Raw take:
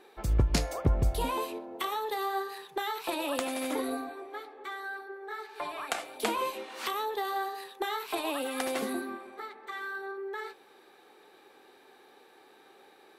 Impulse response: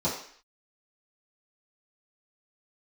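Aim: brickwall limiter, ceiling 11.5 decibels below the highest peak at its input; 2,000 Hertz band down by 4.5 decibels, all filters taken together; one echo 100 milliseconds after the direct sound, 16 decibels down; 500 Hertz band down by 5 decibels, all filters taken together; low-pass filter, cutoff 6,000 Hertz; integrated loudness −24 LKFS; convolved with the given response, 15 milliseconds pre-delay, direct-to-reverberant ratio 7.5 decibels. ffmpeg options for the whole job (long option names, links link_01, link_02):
-filter_complex "[0:a]lowpass=6000,equalizer=frequency=500:width_type=o:gain=-6,equalizer=frequency=2000:width_type=o:gain=-5.5,alimiter=level_in=2dB:limit=-24dB:level=0:latency=1,volume=-2dB,aecho=1:1:100:0.158,asplit=2[link_01][link_02];[1:a]atrim=start_sample=2205,adelay=15[link_03];[link_02][link_03]afir=irnorm=-1:irlink=0,volume=-17.5dB[link_04];[link_01][link_04]amix=inputs=2:normalize=0,volume=13dB"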